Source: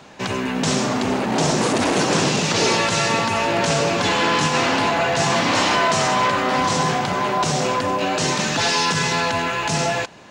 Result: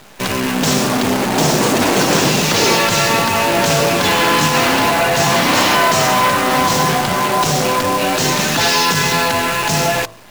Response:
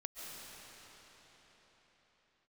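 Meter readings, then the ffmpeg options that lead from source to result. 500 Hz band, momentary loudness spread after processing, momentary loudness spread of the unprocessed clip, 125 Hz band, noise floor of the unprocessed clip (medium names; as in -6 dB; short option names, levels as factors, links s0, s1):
+4.5 dB, 4 LU, 4 LU, +4.5 dB, -25 dBFS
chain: -af "acrusher=bits=5:dc=4:mix=0:aa=0.000001,bandreject=f=55.34:t=h:w=4,bandreject=f=110.68:t=h:w=4,bandreject=f=166.02:t=h:w=4,bandreject=f=221.36:t=h:w=4,bandreject=f=276.7:t=h:w=4,bandreject=f=332.04:t=h:w=4,bandreject=f=387.38:t=h:w=4,bandreject=f=442.72:t=h:w=4,bandreject=f=498.06:t=h:w=4,bandreject=f=553.4:t=h:w=4,bandreject=f=608.74:t=h:w=4,bandreject=f=664.08:t=h:w=4,bandreject=f=719.42:t=h:w=4,bandreject=f=774.76:t=h:w=4,bandreject=f=830.1:t=h:w=4,bandreject=f=885.44:t=h:w=4,bandreject=f=940.78:t=h:w=4,bandreject=f=996.12:t=h:w=4,bandreject=f=1051.46:t=h:w=4,bandreject=f=1106.8:t=h:w=4,bandreject=f=1162.14:t=h:w=4,bandreject=f=1217.48:t=h:w=4,bandreject=f=1272.82:t=h:w=4,bandreject=f=1328.16:t=h:w=4,volume=1.78"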